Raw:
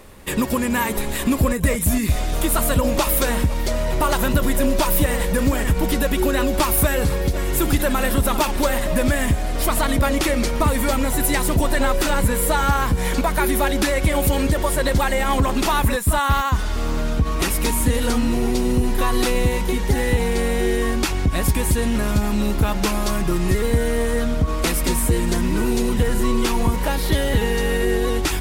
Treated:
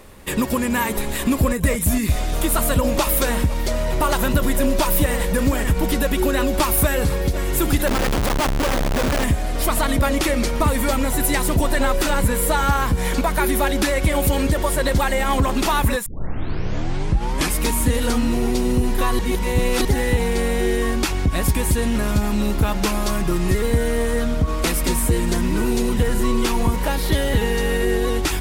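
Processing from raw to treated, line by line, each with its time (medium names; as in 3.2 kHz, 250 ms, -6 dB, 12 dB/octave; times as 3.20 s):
7.87–9.24 s: Schmitt trigger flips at -22 dBFS
16.06 s: tape start 1.53 s
19.19–19.85 s: reverse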